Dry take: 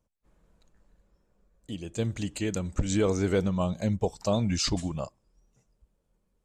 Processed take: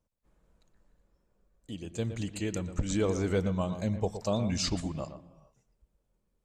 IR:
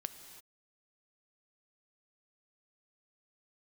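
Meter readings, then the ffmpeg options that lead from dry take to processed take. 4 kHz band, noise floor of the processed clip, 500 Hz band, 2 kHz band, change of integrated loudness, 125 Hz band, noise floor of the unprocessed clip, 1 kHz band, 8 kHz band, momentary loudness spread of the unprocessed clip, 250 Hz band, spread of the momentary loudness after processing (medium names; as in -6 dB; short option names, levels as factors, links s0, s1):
-3.5 dB, -78 dBFS, -3.0 dB, -3.0 dB, -3.0 dB, -3.0 dB, -75 dBFS, -3.0 dB, -3.5 dB, 11 LU, -3.0 dB, 12 LU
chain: -filter_complex "[0:a]asplit=2[s0][s1];[1:a]atrim=start_sample=2205,lowpass=2700,adelay=118[s2];[s1][s2]afir=irnorm=-1:irlink=0,volume=0.422[s3];[s0][s3]amix=inputs=2:normalize=0,volume=0.668"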